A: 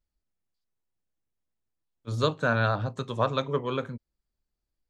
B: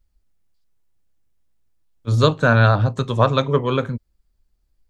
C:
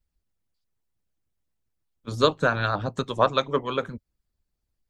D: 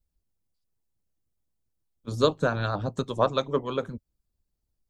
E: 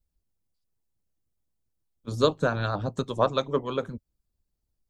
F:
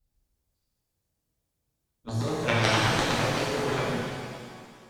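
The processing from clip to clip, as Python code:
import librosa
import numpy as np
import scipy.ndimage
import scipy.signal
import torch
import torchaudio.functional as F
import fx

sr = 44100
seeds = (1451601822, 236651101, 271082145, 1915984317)

y1 = fx.low_shelf(x, sr, hz=92.0, db=12.0)
y1 = y1 * librosa.db_to_amplitude(8.5)
y2 = fx.hpss(y1, sr, part='harmonic', gain_db=-14)
y2 = y2 * librosa.db_to_amplitude(-2.0)
y3 = fx.peak_eq(y2, sr, hz=2000.0, db=-8.0, octaves=2.0)
y4 = y3
y5 = fx.over_compress(y4, sr, threshold_db=-26.0, ratio=-1.0)
y5 = fx.cheby_harmonics(y5, sr, harmonics=(3,), levels_db=(-7,), full_scale_db=-12.5)
y5 = fx.rev_shimmer(y5, sr, seeds[0], rt60_s=2.0, semitones=7, shimmer_db=-8, drr_db=-6.5)
y5 = y5 * librosa.db_to_amplitude(6.5)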